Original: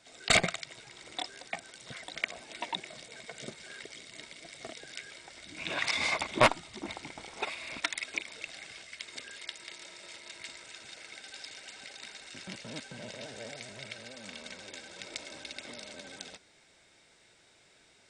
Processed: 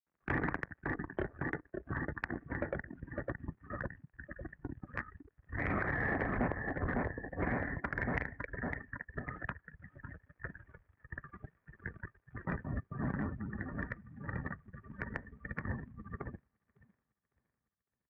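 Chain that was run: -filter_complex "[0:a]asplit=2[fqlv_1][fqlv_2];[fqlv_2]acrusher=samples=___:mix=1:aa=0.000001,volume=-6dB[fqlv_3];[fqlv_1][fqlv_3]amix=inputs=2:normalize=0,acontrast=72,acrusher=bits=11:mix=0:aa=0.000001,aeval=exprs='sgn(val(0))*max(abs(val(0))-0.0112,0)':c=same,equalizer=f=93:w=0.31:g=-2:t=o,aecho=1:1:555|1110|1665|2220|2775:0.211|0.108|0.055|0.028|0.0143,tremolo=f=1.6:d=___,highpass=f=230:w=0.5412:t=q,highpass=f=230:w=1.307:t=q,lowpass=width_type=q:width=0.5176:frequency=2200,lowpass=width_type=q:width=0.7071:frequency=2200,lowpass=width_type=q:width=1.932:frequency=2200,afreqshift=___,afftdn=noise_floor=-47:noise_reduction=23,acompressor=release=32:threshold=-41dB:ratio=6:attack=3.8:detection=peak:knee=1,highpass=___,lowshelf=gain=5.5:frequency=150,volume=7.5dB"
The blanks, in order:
25, 0.66, -370, 53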